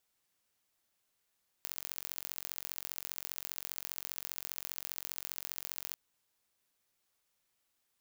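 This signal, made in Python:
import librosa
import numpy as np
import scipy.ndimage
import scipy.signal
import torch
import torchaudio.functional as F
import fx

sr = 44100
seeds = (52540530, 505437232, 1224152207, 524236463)

y = fx.impulse_train(sr, length_s=4.29, per_s=45.0, accent_every=3, level_db=-10.0)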